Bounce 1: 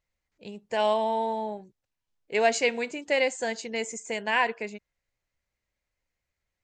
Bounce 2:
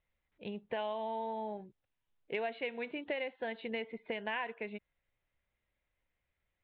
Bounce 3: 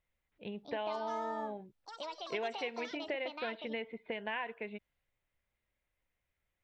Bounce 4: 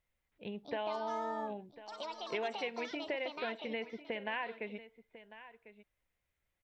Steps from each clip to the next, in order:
Butterworth low-pass 3,800 Hz 96 dB per octave; downward compressor 6 to 1, threshold −35 dBFS, peak gain reduction 16.5 dB
delay with pitch and tempo change per echo 357 ms, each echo +6 semitones, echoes 2, each echo −6 dB; level −1 dB
single-tap delay 1,048 ms −15.5 dB

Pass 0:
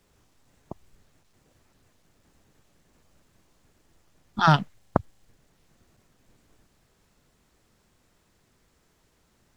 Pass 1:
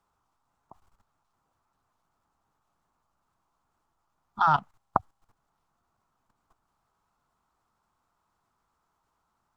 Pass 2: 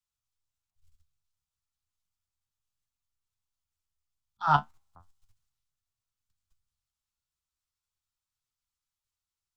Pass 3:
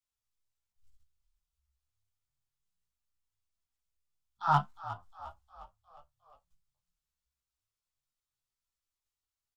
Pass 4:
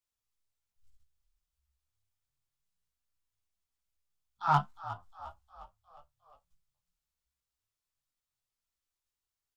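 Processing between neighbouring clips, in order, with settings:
flat-topped bell 1,000 Hz +15 dB 1.2 octaves; notch filter 750 Hz, Q 17; output level in coarse steps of 14 dB; level −6.5 dB
flanger 0.35 Hz, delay 7.5 ms, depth 7.8 ms, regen +52%; volume swells 140 ms; multiband upward and downward expander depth 70%
gain into a clipping stage and back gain 12.5 dB; echo with shifted repeats 357 ms, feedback 54%, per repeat −35 Hz, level −14.5 dB; multi-voice chorus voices 4, 1 Hz, delay 18 ms, depth 3 ms
stylus tracing distortion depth 0.021 ms

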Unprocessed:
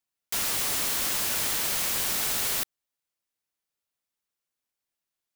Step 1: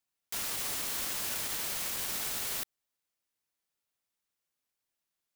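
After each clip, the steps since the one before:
brickwall limiter −25.5 dBFS, peak gain reduction 11 dB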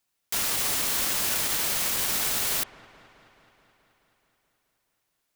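delay with a low-pass on its return 214 ms, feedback 70%, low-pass 2,100 Hz, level −17 dB
level +8.5 dB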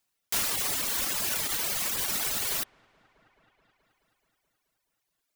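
reverb reduction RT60 1.4 s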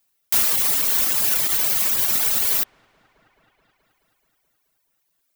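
high-shelf EQ 12,000 Hz +10 dB
level +4 dB

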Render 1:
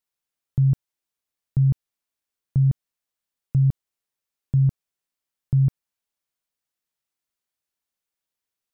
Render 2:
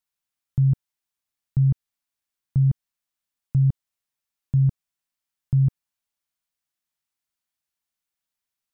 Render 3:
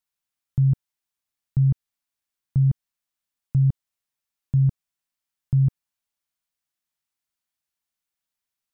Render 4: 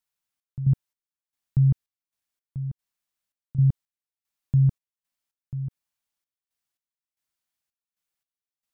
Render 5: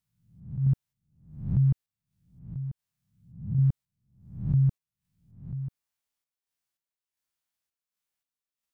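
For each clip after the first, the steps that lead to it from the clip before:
parametric band 440 Hz −7 dB 0.86 octaves
no processing that can be heard
gate pattern "xxx..xx...x" 113 BPM −12 dB
peak hold with a rise ahead of every peak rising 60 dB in 0.57 s; level −3.5 dB

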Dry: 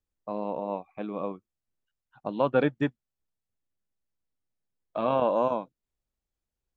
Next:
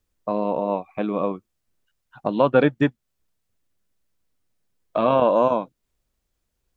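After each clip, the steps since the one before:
notch filter 820 Hz, Q 16
in parallel at +1 dB: downward compressor, threshold −34 dBFS, peak gain reduction 15 dB
on the sum: level +5 dB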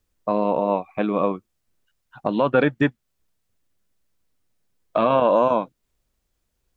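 dynamic equaliser 1,800 Hz, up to +4 dB, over −36 dBFS, Q 0.97
boost into a limiter +8.5 dB
level −6.5 dB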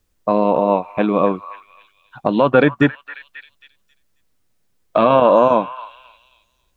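echo through a band-pass that steps 269 ms, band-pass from 1,400 Hz, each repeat 0.7 octaves, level −10.5 dB
level +5.5 dB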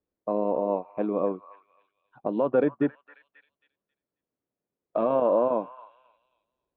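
resonant band-pass 410 Hz, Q 0.99
level −8 dB

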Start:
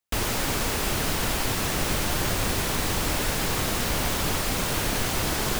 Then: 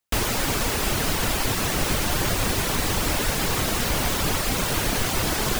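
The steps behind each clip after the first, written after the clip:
reverb reduction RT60 0.5 s
level +3.5 dB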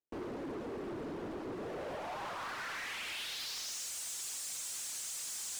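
band-pass filter sweep 350 Hz → 7,600 Hz, 0:01.50–0:03.90
gain into a clipping stage and back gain 35.5 dB
level −3 dB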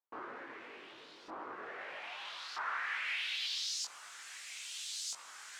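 auto-filter band-pass saw up 0.78 Hz 1,000–4,900 Hz
chorus effect 2.7 Hz, delay 19.5 ms, depth 2.1 ms
level +11.5 dB

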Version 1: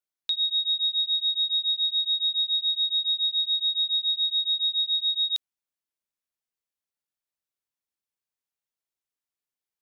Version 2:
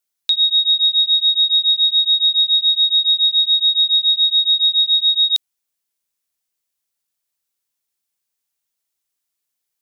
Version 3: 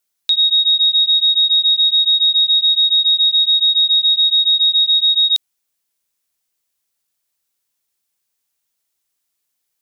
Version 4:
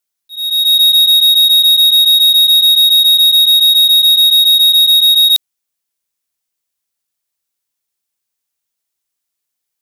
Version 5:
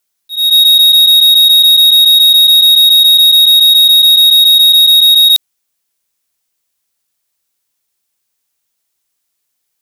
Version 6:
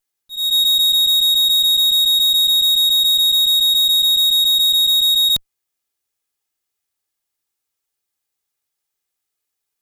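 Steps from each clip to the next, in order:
high-shelf EQ 3,300 Hz +9.5 dB; level +5 dB
brickwall limiter −13.5 dBFS, peak gain reduction 4.5 dB; level +4.5 dB
leveller curve on the samples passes 3; volume swells 490 ms; level +3 dB
brickwall limiter −11.5 dBFS, peak gain reduction 5.5 dB; level +7.5 dB
lower of the sound and its delayed copy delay 2.4 ms; level −8.5 dB

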